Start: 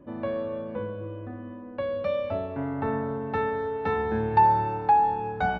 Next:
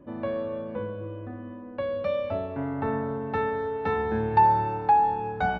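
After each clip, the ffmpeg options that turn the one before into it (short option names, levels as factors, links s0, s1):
-af anull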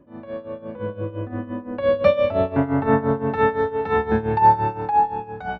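-af "dynaudnorm=f=290:g=7:m=5.62,tremolo=f=5.8:d=0.8"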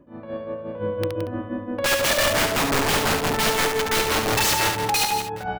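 -filter_complex "[0:a]aeval=exprs='(mod(6.68*val(0)+1,2)-1)/6.68':c=same,asplit=2[s0][s1];[s1]aecho=0:1:71|170|233|752:0.562|0.376|0.15|0.1[s2];[s0][s2]amix=inputs=2:normalize=0"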